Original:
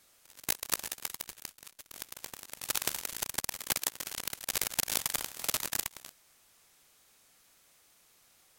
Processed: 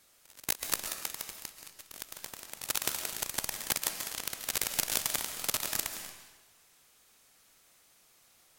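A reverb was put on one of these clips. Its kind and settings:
comb and all-pass reverb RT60 1.1 s, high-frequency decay 0.95×, pre-delay 100 ms, DRR 7 dB

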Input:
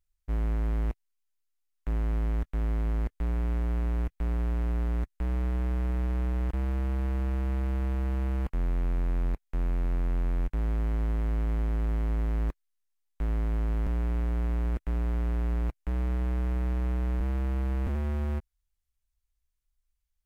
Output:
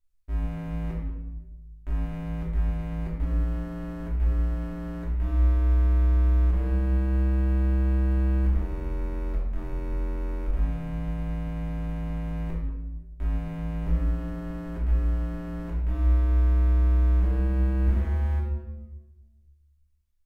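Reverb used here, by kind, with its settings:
rectangular room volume 590 cubic metres, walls mixed, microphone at 2.8 metres
level −6.5 dB

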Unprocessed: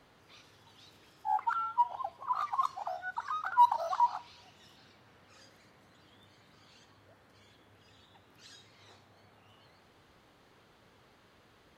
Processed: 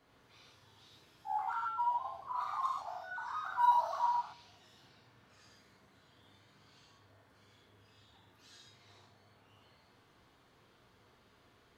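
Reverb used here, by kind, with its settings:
reverb whose tail is shaped and stops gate 170 ms flat, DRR −4.5 dB
level −9.5 dB

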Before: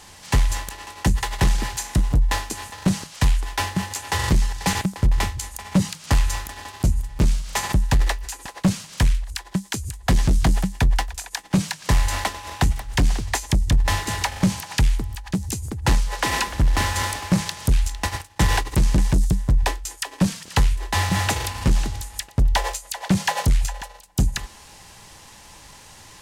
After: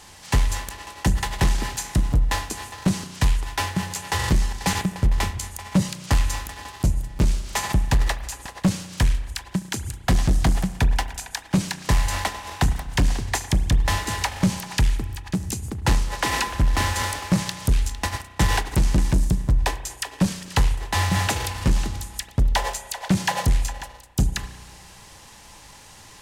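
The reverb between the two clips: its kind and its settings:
spring reverb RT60 1.4 s, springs 33 ms, chirp 75 ms, DRR 12 dB
level −1 dB

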